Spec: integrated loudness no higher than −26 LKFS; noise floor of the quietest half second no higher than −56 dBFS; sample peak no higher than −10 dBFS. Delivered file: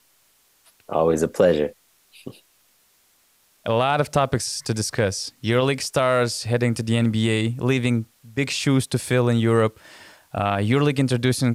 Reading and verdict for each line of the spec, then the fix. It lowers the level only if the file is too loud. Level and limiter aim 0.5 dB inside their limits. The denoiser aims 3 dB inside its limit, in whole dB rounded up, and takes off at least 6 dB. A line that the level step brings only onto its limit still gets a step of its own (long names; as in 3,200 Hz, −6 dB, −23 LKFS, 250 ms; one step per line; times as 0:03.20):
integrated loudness −21.5 LKFS: out of spec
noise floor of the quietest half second −61 dBFS: in spec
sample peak −6.0 dBFS: out of spec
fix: level −5 dB